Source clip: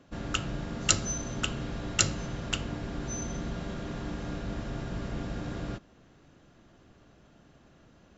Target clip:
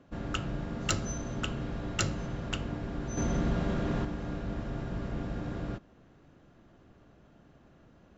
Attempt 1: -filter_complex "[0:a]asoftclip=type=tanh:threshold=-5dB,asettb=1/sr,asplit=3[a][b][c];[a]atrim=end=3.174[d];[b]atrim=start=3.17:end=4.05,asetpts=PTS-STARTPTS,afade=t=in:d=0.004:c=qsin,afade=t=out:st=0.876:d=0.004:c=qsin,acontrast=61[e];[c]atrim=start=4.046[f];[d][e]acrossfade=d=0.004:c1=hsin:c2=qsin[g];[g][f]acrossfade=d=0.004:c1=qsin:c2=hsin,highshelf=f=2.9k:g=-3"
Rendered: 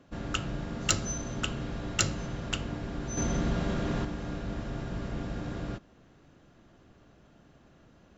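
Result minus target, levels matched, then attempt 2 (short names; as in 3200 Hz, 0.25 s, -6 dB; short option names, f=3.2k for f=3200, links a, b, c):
8000 Hz band +4.5 dB
-filter_complex "[0:a]asoftclip=type=tanh:threshold=-5dB,asettb=1/sr,asplit=3[a][b][c];[a]atrim=end=3.174[d];[b]atrim=start=3.17:end=4.05,asetpts=PTS-STARTPTS,afade=t=in:d=0.004:c=qsin,afade=t=out:st=0.876:d=0.004:c=qsin,acontrast=61[e];[c]atrim=start=4.046[f];[d][e]acrossfade=d=0.004:c1=hsin:c2=qsin[g];[g][f]acrossfade=d=0.004:c1=qsin:c2=hsin,highshelf=f=2.9k:g=-10"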